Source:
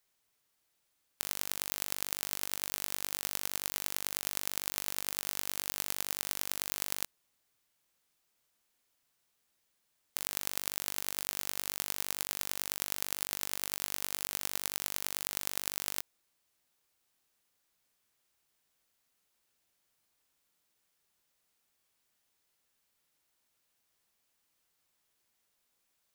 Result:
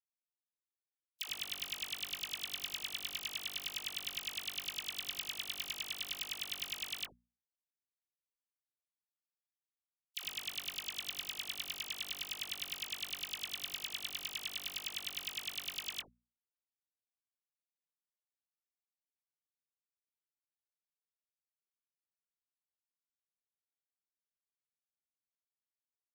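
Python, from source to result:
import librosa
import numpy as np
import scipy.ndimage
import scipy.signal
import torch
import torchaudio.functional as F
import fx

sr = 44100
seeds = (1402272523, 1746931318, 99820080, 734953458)

y = fx.bin_expand(x, sr, power=3.0)
y = fx.peak_eq(y, sr, hz=3100.0, db=11.0, octaves=0.8)
y = fx.hum_notches(y, sr, base_hz=60, count=4)
y = 10.0 ** (-16.5 / 20.0) * np.tanh(y / 10.0 ** (-16.5 / 20.0))
y = fx.dispersion(y, sr, late='lows', ms=82.0, hz=1000.0)
y = y * librosa.db_to_amplitude(2.5)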